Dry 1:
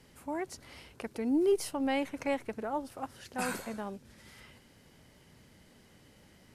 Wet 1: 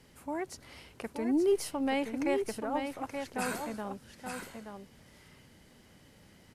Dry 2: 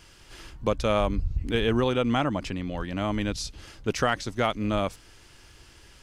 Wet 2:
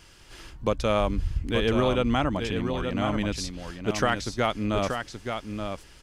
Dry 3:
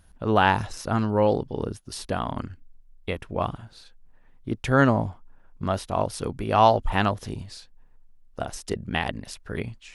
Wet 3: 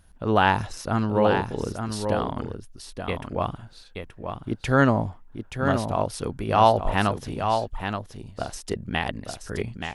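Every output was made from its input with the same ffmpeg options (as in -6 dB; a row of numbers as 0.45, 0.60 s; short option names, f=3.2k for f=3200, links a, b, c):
-af "aecho=1:1:877:0.473"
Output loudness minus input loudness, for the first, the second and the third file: 0.0, 0.0, +0.5 LU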